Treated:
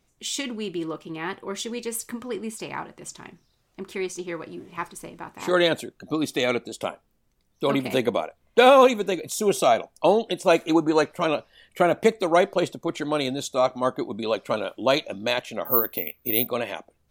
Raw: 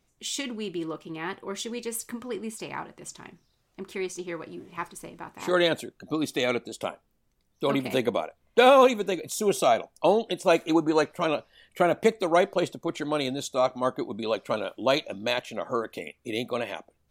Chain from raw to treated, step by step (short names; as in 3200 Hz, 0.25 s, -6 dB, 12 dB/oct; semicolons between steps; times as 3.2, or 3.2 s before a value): 15.65–16.47 careless resampling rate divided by 3×, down filtered, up zero stuff; gain +2.5 dB